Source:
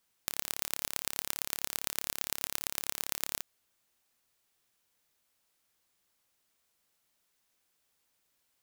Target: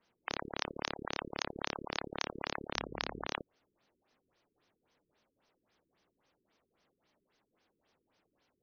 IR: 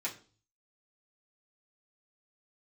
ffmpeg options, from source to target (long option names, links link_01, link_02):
-filter_complex "[0:a]acrossover=split=460[link_01][link_02];[link_01]aeval=exprs='(mod(89.1*val(0)+1,2)-1)/89.1':channel_layout=same[link_03];[link_03][link_02]amix=inputs=2:normalize=0,asettb=1/sr,asplit=3[link_04][link_05][link_06];[link_04]atrim=end=2.754[link_07];[link_05]atrim=start=2.75:end=3.26,asetpts=PTS-STARTPTS,afade=type=in:duration=0.004:curve=qsin,afade=type=out:start_time=0.506:duration=0.004:curve=qsin,aeval=exprs='val(0)+0.00112*(sin(2*PI*50*n/s)+sin(2*PI*2*50*n/s)/2+sin(2*PI*3*50*n/s)/3+sin(2*PI*4*50*n/s)/4+sin(2*PI*5*50*n/s)/5)':channel_layout=same[link_08];[link_06]atrim=start=3.256[link_09];[link_07][link_08]acrossfade=duration=0.004:curve1=hsin:curve2=qsin[link_10];[link_10][link_09]acrossfade=duration=0.004:curve1=qsin:curve2=hsin,equalizer=frequency=350:width=0.42:gain=9,afftfilt=real='re*lt(b*sr/1024,430*pow(6600/430,0.5+0.5*sin(2*PI*3.7*pts/sr)))':imag='im*lt(b*sr/1024,430*pow(6600/430,0.5+0.5*sin(2*PI*3.7*pts/sr)))':win_size=1024:overlap=0.75,volume=3.5dB"